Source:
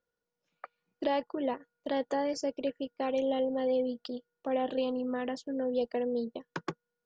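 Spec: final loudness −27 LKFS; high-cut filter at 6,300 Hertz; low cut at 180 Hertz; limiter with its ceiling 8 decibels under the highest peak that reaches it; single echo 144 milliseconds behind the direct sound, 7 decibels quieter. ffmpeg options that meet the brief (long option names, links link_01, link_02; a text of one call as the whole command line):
ffmpeg -i in.wav -af "highpass=180,lowpass=6300,alimiter=level_in=3.5dB:limit=-24dB:level=0:latency=1,volume=-3.5dB,aecho=1:1:144:0.447,volume=9.5dB" out.wav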